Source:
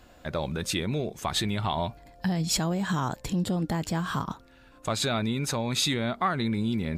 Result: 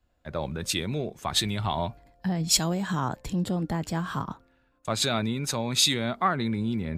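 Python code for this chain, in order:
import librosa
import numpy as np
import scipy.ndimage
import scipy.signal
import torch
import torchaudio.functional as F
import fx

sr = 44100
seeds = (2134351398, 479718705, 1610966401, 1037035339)

y = fx.band_widen(x, sr, depth_pct=70)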